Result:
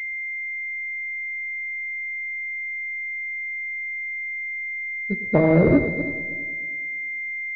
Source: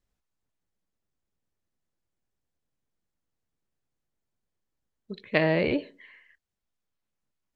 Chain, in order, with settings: chunks repeated in reverse 128 ms, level -7.5 dB; level-controlled noise filter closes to 650 Hz, open at -20.5 dBFS; bass shelf 220 Hz +11 dB; in parallel at -9 dB: sine folder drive 8 dB, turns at -3 dBFS; on the sum: de-hum 79.07 Hz, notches 3; on a send: multi-head delay 107 ms, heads first and third, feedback 44%, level -16 dB; on the sum: class-D stage that switches slowly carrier 2.1 kHz; trim -1.5 dB

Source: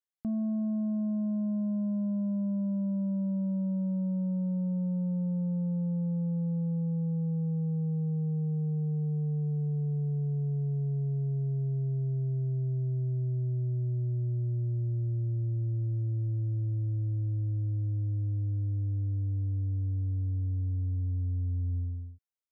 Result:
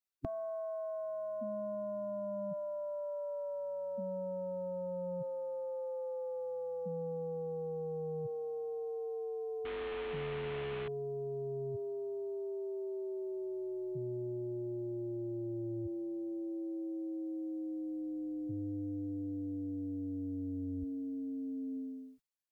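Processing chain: 9.65–10.88 s: CVSD coder 16 kbps; spectral gate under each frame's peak -10 dB weak; trim +9.5 dB

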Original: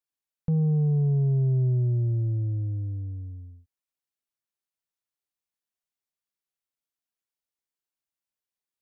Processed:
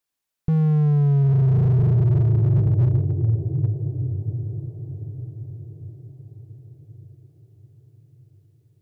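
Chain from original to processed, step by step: echo that smears into a reverb 999 ms, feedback 43%, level -5.5 dB; slew-rate limiter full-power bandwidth 8.6 Hz; trim +8.5 dB

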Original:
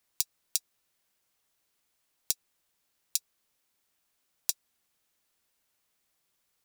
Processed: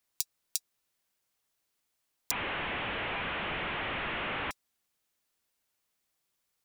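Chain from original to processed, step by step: 2.31–4.51 s: one-bit delta coder 16 kbps, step -24 dBFS; trim -3.5 dB

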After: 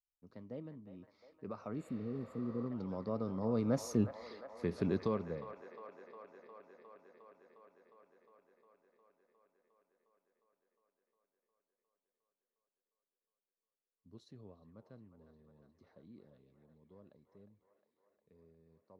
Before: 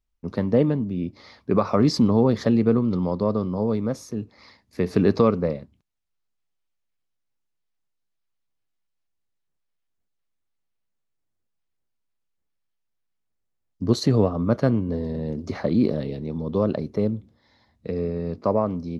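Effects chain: Doppler pass-by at 3.99 s, 15 m/s, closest 2.8 m; feedback echo behind a band-pass 357 ms, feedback 77%, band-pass 1.2 kHz, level -8 dB; spectral replace 1.81–2.63 s, 490–6800 Hz both; trim -1.5 dB

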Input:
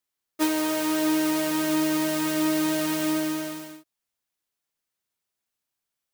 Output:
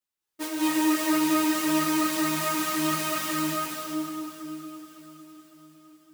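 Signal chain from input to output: formant shift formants -2 st; echo that smears into a reverb 454 ms, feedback 57%, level -13.5 dB; reverberation RT60 2.5 s, pre-delay 171 ms, DRR -6.5 dB; three-phase chorus; trim -2 dB

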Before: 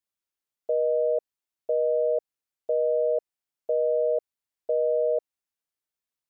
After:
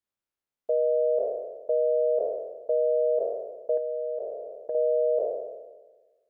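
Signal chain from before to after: spectral sustain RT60 1.35 s; 3.77–4.75 s: compression 2:1, threshold -34 dBFS, peak gain reduction 7.5 dB; tape noise reduction on one side only decoder only

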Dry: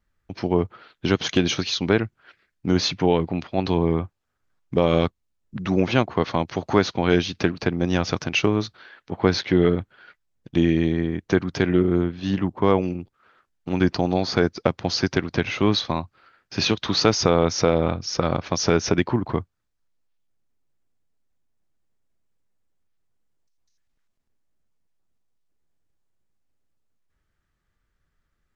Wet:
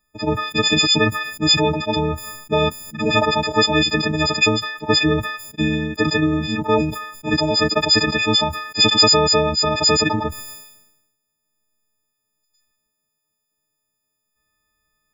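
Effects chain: partials quantised in pitch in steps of 6 st; time stretch by phase-locked vocoder 0.53×; decay stretcher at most 60 dB/s

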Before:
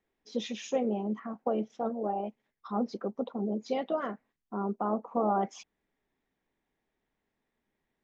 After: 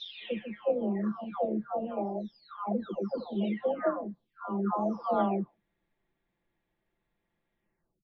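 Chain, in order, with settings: delay that grows with frequency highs early, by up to 894 ms; steep low-pass 4.2 kHz; bass shelf 160 Hz +5 dB; trim +3 dB

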